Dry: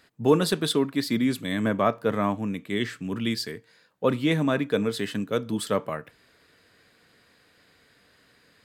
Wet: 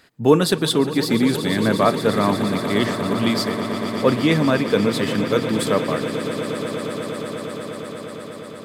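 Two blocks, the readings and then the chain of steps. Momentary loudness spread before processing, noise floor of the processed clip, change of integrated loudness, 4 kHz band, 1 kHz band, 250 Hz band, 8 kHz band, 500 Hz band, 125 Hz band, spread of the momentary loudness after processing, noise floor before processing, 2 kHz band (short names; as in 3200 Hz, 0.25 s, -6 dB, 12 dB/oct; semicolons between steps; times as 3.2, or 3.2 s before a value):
8 LU, -35 dBFS, +6.0 dB, +7.5 dB, +7.5 dB, +7.0 dB, +7.0 dB, +7.0 dB, +7.0 dB, 13 LU, -62 dBFS, +7.0 dB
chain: swelling echo 0.118 s, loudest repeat 8, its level -15 dB; gain +5.5 dB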